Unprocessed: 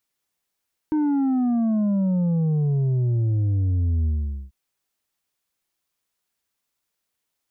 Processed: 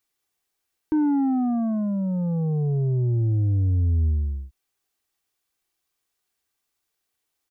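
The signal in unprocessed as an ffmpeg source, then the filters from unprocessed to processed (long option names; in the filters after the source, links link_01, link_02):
-f lavfi -i "aevalsrc='0.112*clip((3.59-t)/0.45,0,1)*tanh(1.78*sin(2*PI*310*3.59/log(65/310)*(exp(log(65/310)*t/3.59)-1)))/tanh(1.78)':duration=3.59:sample_rate=44100"
-af "aecho=1:1:2.6:0.35"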